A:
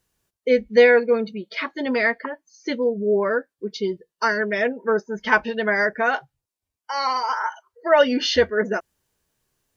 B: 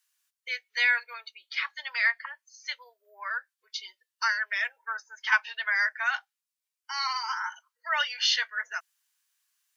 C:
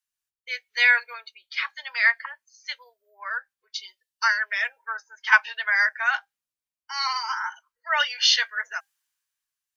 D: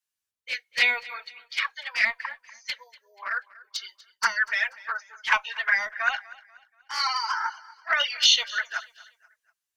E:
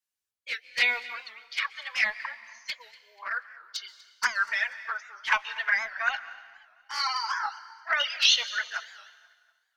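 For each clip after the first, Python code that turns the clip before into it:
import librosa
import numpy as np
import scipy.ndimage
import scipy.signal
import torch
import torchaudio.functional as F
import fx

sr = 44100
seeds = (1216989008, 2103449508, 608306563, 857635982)

y1 = scipy.signal.sosfilt(scipy.signal.bessel(6, 1700.0, 'highpass', norm='mag', fs=sr, output='sos'), x)
y2 = fx.low_shelf(y1, sr, hz=430.0, db=6.5)
y2 = fx.comb_fb(y2, sr, f0_hz=800.0, decay_s=0.16, harmonics='all', damping=0.0, mix_pct=30)
y2 = fx.band_widen(y2, sr, depth_pct=40)
y2 = y2 * 10.0 ** (6.0 / 20.0)
y3 = fx.cheby_harmonics(y2, sr, harmonics=(6,), levels_db=(-45,), full_scale_db=-1.0)
y3 = fx.env_flanger(y3, sr, rest_ms=10.7, full_db=-17.5)
y3 = fx.echo_feedback(y3, sr, ms=242, feedback_pct=39, wet_db=-20.5)
y3 = y3 * 10.0 ** (3.5 / 20.0)
y4 = fx.rev_plate(y3, sr, seeds[0], rt60_s=1.6, hf_ratio=0.95, predelay_ms=115, drr_db=16.0)
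y4 = fx.record_warp(y4, sr, rpm=78.0, depth_cents=160.0)
y4 = y4 * 10.0 ** (-2.5 / 20.0)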